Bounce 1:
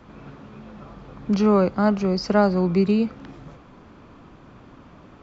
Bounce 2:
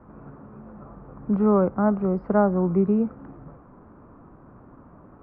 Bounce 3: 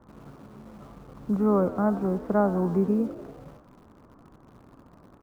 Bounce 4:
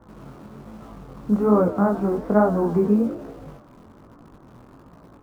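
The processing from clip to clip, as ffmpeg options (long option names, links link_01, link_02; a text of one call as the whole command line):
ffmpeg -i in.wav -af "lowpass=frequency=1400:width=0.5412,lowpass=frequency=1400:width=1.3066,volume=-1.5dB" out.wav
ffmpeg -i in.wav -filter_complex "[0:a]asplit=2[link_01][link_02];[link_02]acrusher=bits=6:mix=0:aa=0.000001,volume=-10.5dB[link_03];[link_01][link_03]amix=inputs=2:normalize=0,asplit=7[link_04][link_05][link_06][link_07][link_08][link_09][link_10];[link_05]adelay=93,afreqshift=63,volume=-16dB[link_11];[link_06]adelay=186,afreqshift=126,volume=-20.2dB[link_12];[link_07]adelay=279,afreqshift=189,volume=-24.3dB[link_13];[link_08]adelay=372,afreqshift=252,volume=-28.5dB[link_14];[link_09]adelay=465,afreqshift=315,volume=-32.6dB[link_15];[link_10]adelay=558,afreqshift=378,volume=-36.8dB[link_16];[link_04][link_11][link_12][link_13][link_14][link_15][link_16]amix=inputs=7:normalize=0,volume=-5.5dB" out.wav
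ffmpeg -i in.wav -af "flanger=delay=17.5:depth=7.1:speed=1.2,volume=8dB" out.wav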